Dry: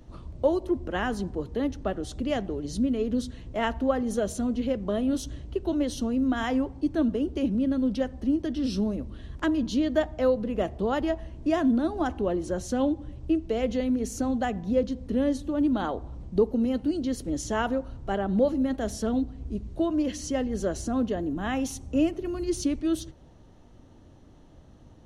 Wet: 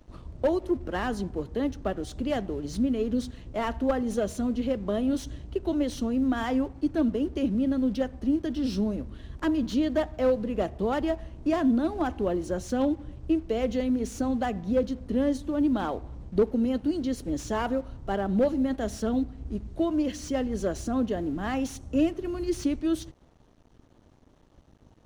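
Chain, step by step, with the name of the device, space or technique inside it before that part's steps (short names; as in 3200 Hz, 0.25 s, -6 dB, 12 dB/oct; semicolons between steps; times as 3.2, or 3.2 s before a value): early transistor amplifier (crossover distortion -54.5 dBFS; slew limiter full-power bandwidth 64 Hz)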